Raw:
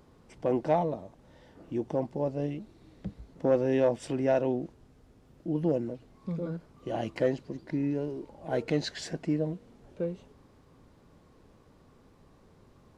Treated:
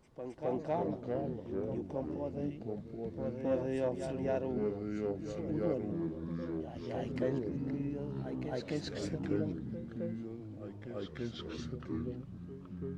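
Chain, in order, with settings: reverse echo 0.266 s -7 dB; echoes that change speed 0.217 s, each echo -4 st, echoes 3; gain -9 dB

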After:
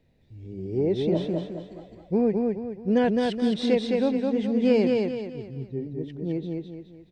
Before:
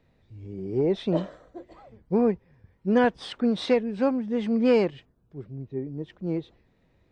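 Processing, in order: bell 1200 Hz -12 dB 0.84 oct; on a send: feedback echo 0.212 s, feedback 39%, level -3 dB

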